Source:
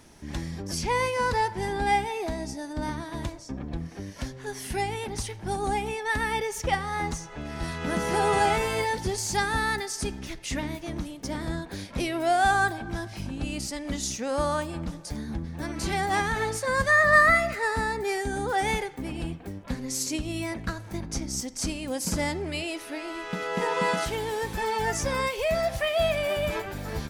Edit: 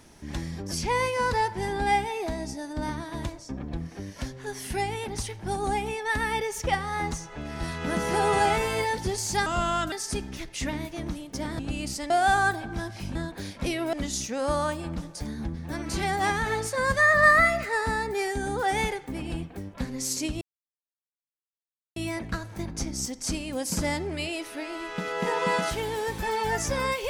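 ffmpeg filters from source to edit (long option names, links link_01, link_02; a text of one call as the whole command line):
ffmpeg -i in.wav -filter_complex "[0:a]asplit=8[link_01][link_02][link_03][link_04][link_05][link_06][link_07][link_08];[link_01]atrim=end=9.464[link_09];[link_02]atrim=start=9.46:end=9.82,asetpts=PTS-STARTPTS,asetrate=34398,aresample=44100[link_10];[link_03]atrim=start=9.816:end=11.492[link_11];[link_04]atrim=start=13.318:end=13.832[link_12];[link_05]atrim=start=12.268:end=13.322[link_13];[link_06]atrim=start=11.488:end=12.272[link_14];[link_07]atrim=start=13.828:end=20.31,asetpts=PTS-STARTPTS,afade=type=out:start_time=6.478:duration=0.004:curve=hsin,apad=pad_dur=1.55[link_15];[link_08]atrim=start=20.31,asetpts=PTS-STARTPTS,afade=type=in:duration=0.004:curve=hsin[link_16];[link_09][link_10]acrossfade=duration=0.004:curve1=hsin:curve2=hsin[link_17];[link_17][link_11]acrossfade=duration=0.004:curve1=hsin:curve2=hsin[link_18];[link_18][link_12]acrossfade=duration=0.004:curve1=hsin:curve2=hsin[link_19];[link_19][link_13]acrossfade=duration=0.004:curve1=hsin:curve2=hsin[link_20];[link_20][link_14]acrossfade=duration=0.004:curve1=hsin:curve2=hsin[link_21];[link_15][link_16]concat=n=2:v=0:a=1[link_22];[link_21][link_22]acrossfade=duration=0.004:curve1=hsin:curve2=hsin" out.wav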